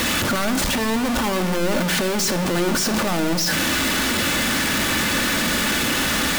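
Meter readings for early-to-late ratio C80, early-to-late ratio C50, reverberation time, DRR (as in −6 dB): 13.5 dB, 12.0 dB, 1.3 s, 7.0 dB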